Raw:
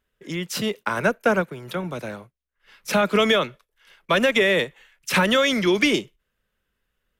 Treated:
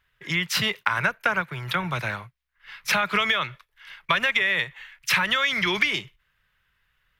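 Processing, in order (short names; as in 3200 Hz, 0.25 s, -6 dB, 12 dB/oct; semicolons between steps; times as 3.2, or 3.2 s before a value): graphic EQ 125/250/500/1000/2000/4000/8000 Hz +7/-11/-8/+5/+8/+4/-5 dB; compressor 10:1, threshold -22 dBFS, peak gain reduction 13 dB; gain +3 dB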